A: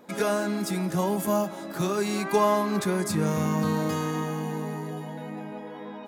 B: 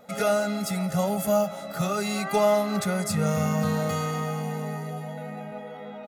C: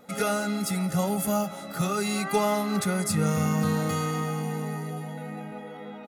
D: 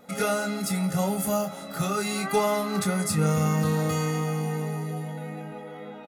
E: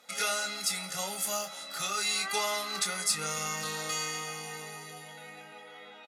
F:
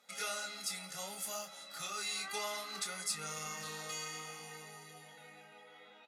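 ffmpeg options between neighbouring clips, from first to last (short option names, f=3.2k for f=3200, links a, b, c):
-af "aecho=1:1:1.5:0.93,volume=-1dB"
-af "equalizer=f=315:t=o:w=0.33:g=9,equalizer=f=630:t=o:w=0.33:g=-8,equalizer=f=10k:t=o:w=0.33:g=5"
-filter_complex "[0:a]asplit=2[a][b];[b]adelay=26,volume=-8dB[c];[a][c]amix=inputs=2:normalize=0"
-af "bandpass=f=4.7k:t=q:w=0.8:csg=0,volume=5.5dB"
-af "flanger=delay=5:depth=9.8:regen=-56:speed=0.63:shape=sinusoidal,volume=-4.5dB"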